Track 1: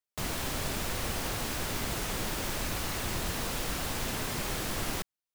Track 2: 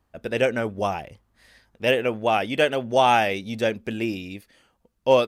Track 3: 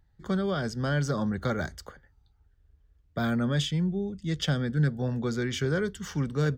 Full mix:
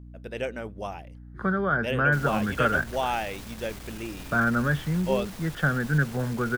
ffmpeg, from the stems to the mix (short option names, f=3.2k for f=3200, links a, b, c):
-filter_complex "[0:a]aeval=exprs='(tanh(35.5*val(0)+0.5)-tanh(0.5))/35.5':c=same,adelay=1950,volume=-6.5dB[a];[1:a]aeval=exprs='val(0)+0.0224*(sin(2*PI*60*n/s)+sin(2*PI*2*60*n/s)/2+sin(2*PI*3*60*n/s)/3+sin(2*PI*4*60*n/s)/4+sin(2*PI*5*60*n/s)/5)':c=same,volume=-10dB[b];[2:a]lowpass=f=1.5k:t=q:w=4,adelay=1150,volume=0.5dB[c];[a][b][c]amix=inputs=3:normalize=0"